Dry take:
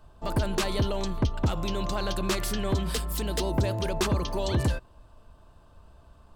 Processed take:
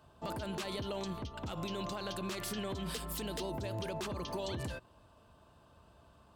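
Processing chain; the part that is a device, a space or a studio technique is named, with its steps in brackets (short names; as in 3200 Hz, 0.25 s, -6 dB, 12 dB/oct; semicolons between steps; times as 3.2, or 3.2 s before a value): broadcast voice chain (HPF 97 Hz 12 dB/oct; de-esser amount 50%; compressor 4:1, threshold -29 dBFS, peak gain reduction 8 dB; bell 3000 Hz +2.5 dB; limiter -27 dBFS, peak gain reduction 9.5 dB); gain -3 dB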